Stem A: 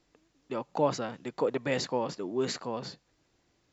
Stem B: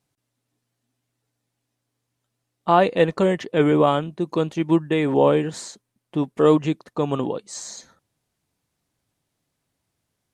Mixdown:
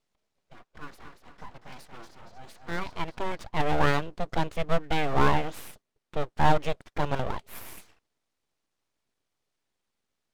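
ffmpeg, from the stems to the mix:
ffmpeg -i stem1.wav -i stem2.wav -filter_complex "[0:a]asplit=2[link_01][link_02];[link_02]adelay=3.3,afreqshift=-0.83[link_03];[link_01][link_03]amix=inputs=2:normalize=1,volume=-10.5dB,asplit=3[link_04][link_05][link_06];[link_05]volume=-7dB[link_07];[1:a]lowshelf=frequency=120:gain=-6,volume=-2dB[link_08];[link_06]apad=whole_len=455774[link_09];[link_08][link_09]sidechaincompress=threshold=-52dB:ratio=10:attack=7.8:release=1350[link_10];[link_07]aecho=0:1:233|466|699|932|1165|1398|1631:1|0.47|0.221|0.104|0.0488|0.0229|0.0108[link_11];[link_04][link_10][link_11]amix=inputs=3:normalize=0,lowpass=6500,aeval=exprs='abs(val(0))':channel_layout=same" out.wav

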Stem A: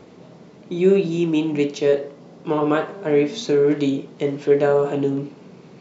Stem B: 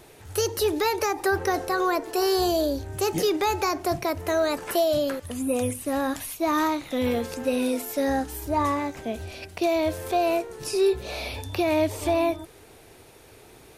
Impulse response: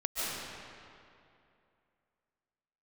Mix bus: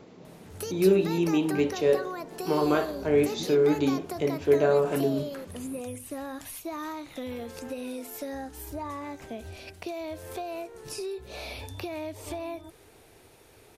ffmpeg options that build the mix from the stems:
-filter_complex "[0:a]volume=-5dB[link_01];[1:a]acompressor=threshold=-28dB:ratio=6,adelay=250,volume=-5dB[link_02];[link_01][link_02]amix=inputs=2:normalize=0"

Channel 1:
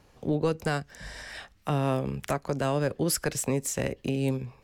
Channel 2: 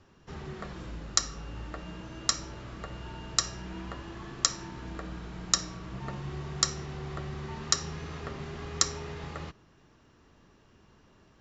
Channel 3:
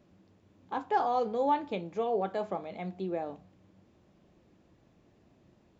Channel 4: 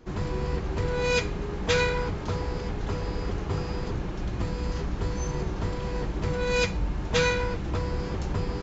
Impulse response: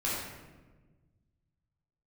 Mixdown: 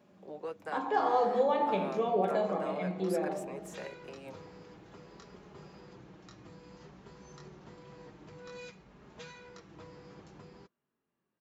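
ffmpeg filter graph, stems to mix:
-filter_complex "[0:a]acrossover=split=440 2200:gain=0.0631 1 0.224[link_01][link_02][link_03];[link_01][link_02][link_03]amix=inputs=3:normalize=0,volume=-4.5dB[link_04];[1:a]lowpass=3000,flanger=delay=20:depth=3.8:speed=1,adelay=750,volume=-17dB[link_05];[2:a]volume=1dB,asplit=3[link_06][link_07][link_08];[link_07]volume=-6dB[link_09];[3:a]alimiter=limit=-18dB:level=0:latency=1:release=476,adelay=2050,volume=-14.5dB[link_10];[link_08]apad=whole_len=470563[link_11];[link_10][link_11]sidechaincompress=threshold=-51dB:ratio=8:attack=16:release=145[link_12];[4:a]atrim=start_sample=2205[link_13];[link_09][link_13]afir=irnorm=-1:irlink=0[link_14];[link_04][link_05][link_06][link_12][link_14]amix=inputs=5:normalize=0,highpass=140,flanger=delay=4.8:depth=1.7:regen=-46:speed=0.55:shape=sinusoidal"

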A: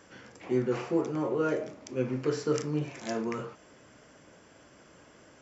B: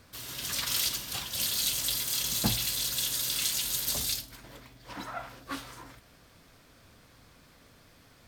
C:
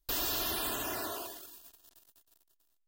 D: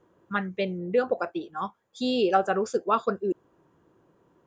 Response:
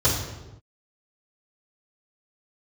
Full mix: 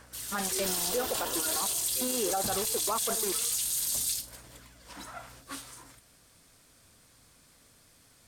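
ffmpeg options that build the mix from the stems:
-filter_complex "[0:a]highpass=720,aphaser=in_gain=1:out_gain=1:delay=4.6:decay=0.72:speed=0.46:type=sinusoidal,aeval=exprs='val(0)+0.00224*(sin(2*PI*60*n/s)+sin(2*PI*2*60*n/s)/2+sin(2*PI*3*60*n/s)/3+sin(2*PI*4*60*n/s)/4+sin(2*PI*5*60*n/s)/5)':channel_layout=same,volume=-5dB[link_01];[1:a]equalizer=frequency=9100:width_type=o:width=1.3:gain=14,volume=-6dB[link_02];[2:a]adelay=550,volume=-2.5dB[link_03];[3:a]acrusher=bits=4:mix=0:aa=0.5,equalizer=frequency=830:width=1.5:gain=7,volume=-5.5dB[link_04];[link_01][link_02][link_03][link_04]amix=inputs=4:normalize=0,alimiter=limit=-20.5dB:level=0:latency=1:release=36"

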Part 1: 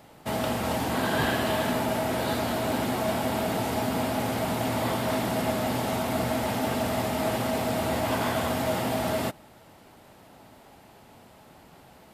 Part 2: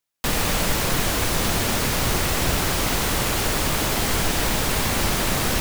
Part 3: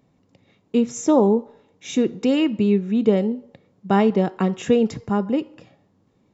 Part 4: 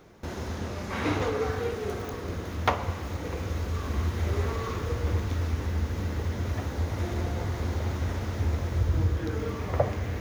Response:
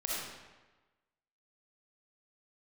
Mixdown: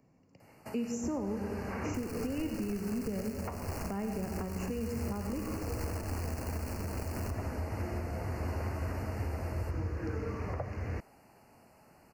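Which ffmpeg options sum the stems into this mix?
-filter_complex "[0:a]acompressor=threshold=-34dB:ratio=6,adelay=400,volume=-10dB,asplit=2[link_01][link_02];[link_02]volume=-12.5dB[link_03];[1:a]acrusher=bits=2:mix=0:aa=0.5,adelay=1700,volume=-14dB,asplit=2[link_04][link_05];[link_05]volume=-12dB[link_06];[2:a]volume=-7dB,asplit=2[link_07][link_08];[link_08]volume=-7.5dB[link_09];[3:a]lowpass=11000,highshelf=frequency=5800:gain=-11,adelay=800,volume=-3.5dB[link_10];[4:a]atrim=start_sample=2205[link_11];[link_03][link_06][link_09]amix=inputs=3:normalize=0[link_12];[link_12][link_11]afir=irnorm=-1:irlink=0[link_13];[link_01][link_04][link_07][link_10][link_13]amix=inputs=5:normalize=0,acrossover=split=220|1100[link_14][link_15][link_16];[link_14]acompressor=threshold=-31dB:ratio=4[link_17];[link_15]acompressor=threshold=-34dB:ratio=4[link_18];[link_16]acompressor=threshold=-42dB:ratio=4[link_19];[link_17][link_18][link_19]amix=inputs=3:normalize=0,asuperstop=centerf=3500:order=12:qfactor=2.6,alimiter=level_in=2dB:limit=-24dB:level=0:latency=1:release=366,volume=-2dB"

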